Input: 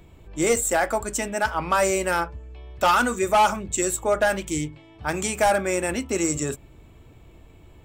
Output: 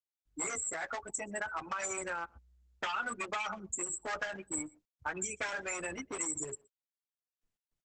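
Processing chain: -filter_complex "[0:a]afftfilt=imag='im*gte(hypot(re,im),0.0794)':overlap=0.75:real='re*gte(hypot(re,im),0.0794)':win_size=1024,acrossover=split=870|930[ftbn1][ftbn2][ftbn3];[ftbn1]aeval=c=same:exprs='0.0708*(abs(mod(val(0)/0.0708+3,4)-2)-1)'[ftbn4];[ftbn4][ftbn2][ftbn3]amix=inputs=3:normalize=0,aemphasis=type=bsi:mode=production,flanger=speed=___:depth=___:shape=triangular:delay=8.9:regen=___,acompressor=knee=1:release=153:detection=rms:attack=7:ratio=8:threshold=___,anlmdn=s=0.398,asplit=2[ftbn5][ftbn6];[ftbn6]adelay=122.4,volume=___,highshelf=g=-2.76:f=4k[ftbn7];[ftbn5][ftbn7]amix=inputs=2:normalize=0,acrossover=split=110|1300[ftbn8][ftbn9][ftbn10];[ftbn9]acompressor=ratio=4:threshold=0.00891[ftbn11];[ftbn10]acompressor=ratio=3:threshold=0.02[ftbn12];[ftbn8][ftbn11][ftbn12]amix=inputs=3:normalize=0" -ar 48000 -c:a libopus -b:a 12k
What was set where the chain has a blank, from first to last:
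0.62, 3.6, 11, 0.0631, 0.0355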